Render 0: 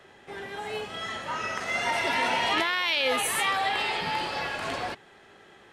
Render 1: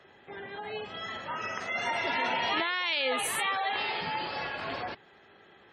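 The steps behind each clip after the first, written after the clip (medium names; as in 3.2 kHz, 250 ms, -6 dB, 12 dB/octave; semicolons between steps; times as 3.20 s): high-pass 48 Hz; spectral gate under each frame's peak -25 dB strong; trim -3.5 dB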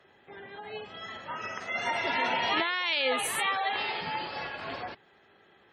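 upward expansion 1.5:1, over -39 dBFS; trim +2 dB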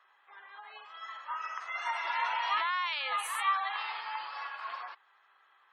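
resonant high-pass 1.1 kHz, resonance Q 4.4; trim -8 dB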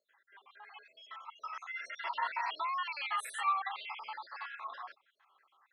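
random holes in the spectrogram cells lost 55%; trim -1.5 dB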